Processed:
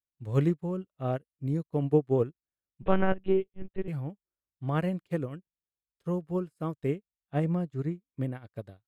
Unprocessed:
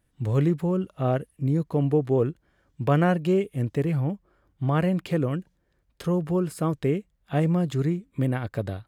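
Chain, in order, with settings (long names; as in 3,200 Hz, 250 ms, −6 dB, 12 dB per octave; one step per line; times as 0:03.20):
0:02.82–0:03.88: one-pitch LPC vocoder at 8 kHz 190 Hz
0:06.95–0:08.35: high-shelf EQ 3,100 Hz −7 dB
expander for the loud parts 2.5 to 1, over −42 dBFS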